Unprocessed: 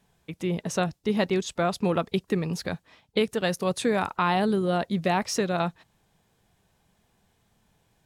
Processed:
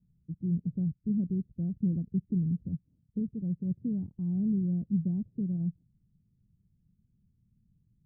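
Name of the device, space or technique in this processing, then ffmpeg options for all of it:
the neighbour's flat through the wall: -af "lowpass=f=220:w=0.5412,lowpass=f=220:w=1.3066,equalizer=f=130:t=o:w=0.77:g=3"

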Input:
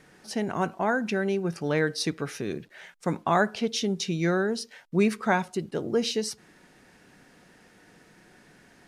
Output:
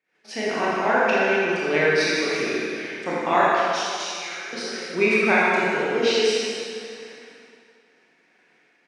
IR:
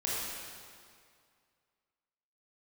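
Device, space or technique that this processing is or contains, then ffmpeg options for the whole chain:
station announcement: -filter_complex "[0:a]highshelf=f=4.9k:g=5,aecho=1:1:258|516|774|1032|1290:0.141|0.0791|0.0443|0.0248|0.0139,agate=range=-27dB:threshold=-52dB:ratio=16:detection=peak,asettb=1/sr,asplit=3[a][b][c];[a]atrim=end=3.414[d];[b]atrim=start=3.41:end=4.53,asetpts=PTS-STARTPTS,afade=t=in:d=0.004:c=qsin,afade=t=out:st=1.116:d=0.004:c=qsin,aderivative[e];[c]atrim=start=4.526[f];[d][e]acrossfade=d=0.004:c1=hsin:c2=qsin[g];[g][f]acrossfade=d=0.004:c1=qsin:c2=hsin,highpass=300,lowpass=4.7k,equalizer=f=2.3k:t=o:w=0.51:g=10,aecho=1:1:81.63|154.5:0.355|0.316[h];[1:a]atrim=start_sample=2205[i];[h][i]afir=irnorm=-1:irlink=0"

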